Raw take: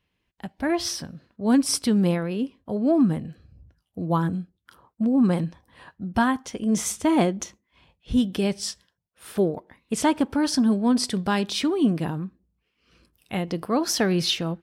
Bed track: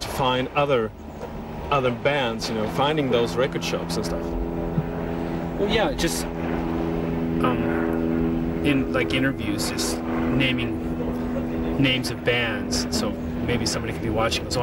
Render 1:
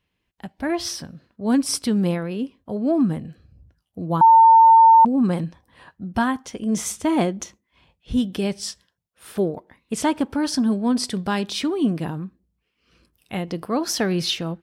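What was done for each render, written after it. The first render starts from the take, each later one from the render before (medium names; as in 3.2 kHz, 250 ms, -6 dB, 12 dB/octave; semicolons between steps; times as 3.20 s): 4.21–5.05 s: bleep 903 Hz -7.5 dBFS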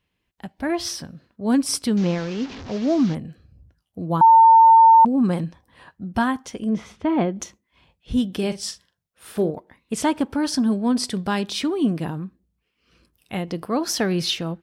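1.97–3.15 s: one-bit delta coder 32 kbps, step -30.5 dBFS; 6.69–7.36 s: distance through air 330 m; 8.35–9.51 s: doubling 43 ms -11 dB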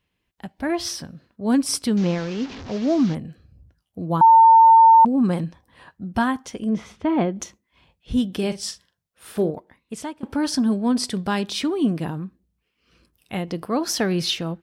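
9.53–10.23 s: fade out, to -22.5 dB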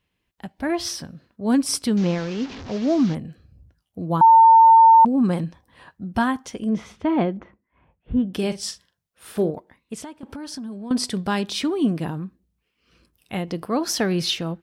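7.37–8.34 s: low-pass 1.9 kHz 24 dB/octave; 10.04–10.91 s: compression 5:1, threshold -32 dBFS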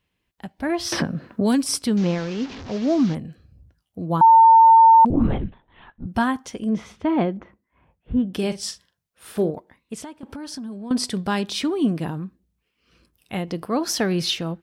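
0.92–1.65 s: three bands compressed up and down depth 100%; 5.10–6.07 s: LPC vocoder at 8 kHz whisper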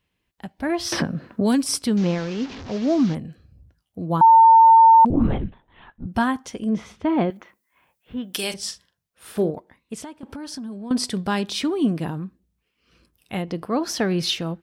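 7.30–8.54 s: tilt EQ +4.5 dB/octave; 13.42–14.23 s: treble shelf 5.4 kHz -7 dB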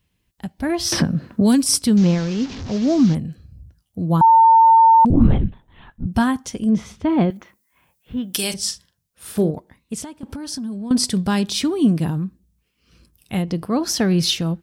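tone controls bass +9 dB, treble +8 dB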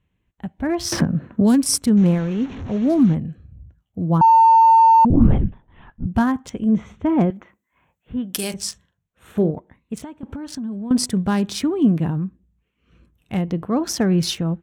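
local Wiener filter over 9 samples; dynamic bell 3.4 kHz, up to -6 dB, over -36 dBFS, Q 1.2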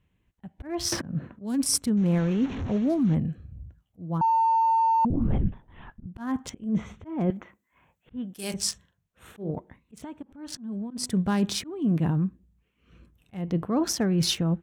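reverse; compression 16:1, threshold -20 dBFS, peak gain reduction 13.5 dB; reverse; slow attack 245 ms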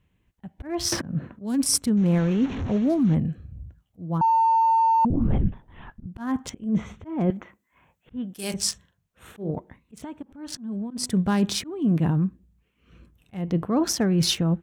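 trim +2.5 dB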